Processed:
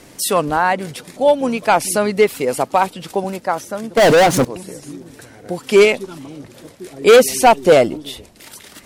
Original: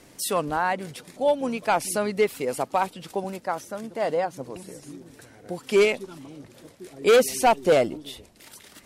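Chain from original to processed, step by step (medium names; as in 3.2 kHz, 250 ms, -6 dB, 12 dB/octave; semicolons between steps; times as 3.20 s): 3.97–4.45 s: waveshaping leveller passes 5; trim +8.5 dB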